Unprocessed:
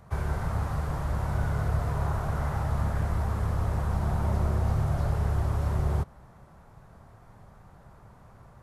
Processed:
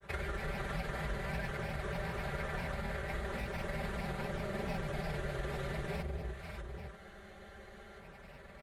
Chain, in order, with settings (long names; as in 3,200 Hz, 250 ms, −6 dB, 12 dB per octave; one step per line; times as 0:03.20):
high-pass filter 41 Hz
parametric band 5,600 Hz −9 dB 0.3 octaves
in parallel at −1 dB: brickwall limiter −24.5 dBFS, peak gain reduction 8.5 dB
on the sum: octave-band graphic EQ 125/250/500/1,000/2,000/4,000 Hz −7/−3/+5/−10/+12/+7 dB
delay that swaps between a low-pass and a high-pass 285 ms, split 880 Hz, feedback 55%, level −4 dB
downward compressor, threshold −29 dBFS, peak gain reduction 7.5 dB
granular cloud, grains 20 per second, spray 22 ms, pitch spread up and down by 3 semitones
comb filter 5.1 ms, depth 68%
frozen spectrum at 0:06.99, 1.02 s
level −5 dB